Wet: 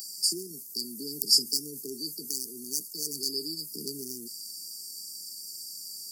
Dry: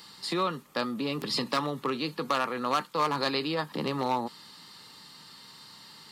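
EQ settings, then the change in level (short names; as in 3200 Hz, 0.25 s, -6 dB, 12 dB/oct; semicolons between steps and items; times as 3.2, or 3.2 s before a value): brick-wall FIR band-stop 450–4500 Hz; RIAA curve recording; high shelf 3200 Hz +9 dB; -2.5 dB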